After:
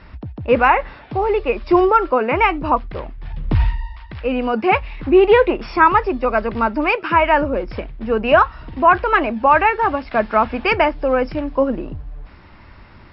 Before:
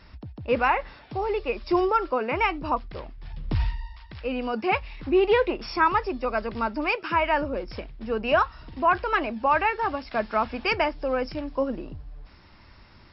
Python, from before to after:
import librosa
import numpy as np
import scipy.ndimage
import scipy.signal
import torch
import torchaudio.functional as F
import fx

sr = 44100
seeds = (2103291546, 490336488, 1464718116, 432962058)

y = scipy.signal.sosfilt(scipy.signal.butter(2, 2800.0, 'lowpass', fs=sr, output='sos'), x)
y = F.gain(torch.from_numpy(y), 9.0).numpy()